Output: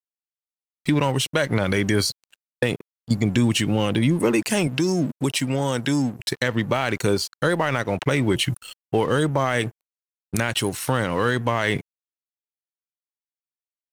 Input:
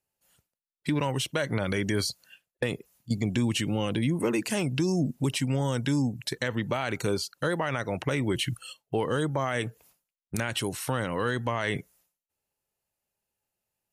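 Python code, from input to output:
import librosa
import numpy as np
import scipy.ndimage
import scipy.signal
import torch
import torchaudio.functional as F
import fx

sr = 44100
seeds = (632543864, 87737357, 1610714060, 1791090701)

y = np.sign(x) * np.maximum(np.abs(x) - 10.0 ** (-47.0 / 20.0), 0.0)
y = fx.highpass(y, sr, hz=220.0, slope=6, at=(4.67, 6.2))
y = y * 10.0 ** (7.5 / 20.0)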